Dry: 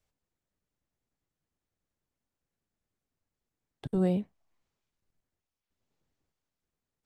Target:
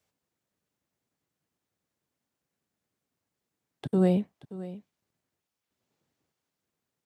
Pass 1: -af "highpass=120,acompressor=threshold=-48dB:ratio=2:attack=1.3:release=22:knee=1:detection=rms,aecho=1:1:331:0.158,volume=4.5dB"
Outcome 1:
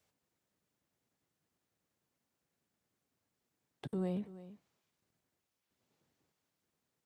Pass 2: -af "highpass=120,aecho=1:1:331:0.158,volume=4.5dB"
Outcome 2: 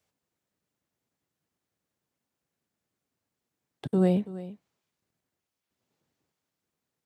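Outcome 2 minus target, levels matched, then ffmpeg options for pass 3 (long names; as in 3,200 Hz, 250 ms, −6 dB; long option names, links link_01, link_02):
echo 247 ms early
-af "highpass=120,aecho=1:1:578:0.158,volume=4.5dB"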